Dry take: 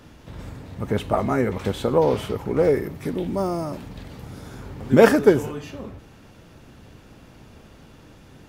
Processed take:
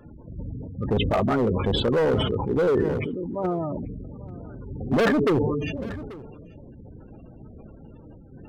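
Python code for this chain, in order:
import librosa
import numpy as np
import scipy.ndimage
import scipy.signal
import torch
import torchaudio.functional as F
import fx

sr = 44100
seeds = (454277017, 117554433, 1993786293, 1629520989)

p1 = fx.spec_gate(x, sr, threshold_db=-15, keep='strong')
p2 = fx.low_shelf(p1, sr, hz=370.0, db=-11.5, at=(2.84, 3.44))
p3 = fx.level_steps(p2, sr, step_db=12)
p4 = p2 + (p3 * 10.0 ** (3.0 / 20.0))
p5 = np.clip(10.0 ** (14.0 / 20.0) * p4, -1.0, 1.0) / 10.0 ** (14.0 / 20.0)
p6 = p5 + fx.echo_single(p5, sr, ms=837, db=-21.0, dry=0)
p7 = fx.sustainer(p6, sr, db_per_s=27.0)
y = p7 * 10.0 ** (-4.0 / 20.0)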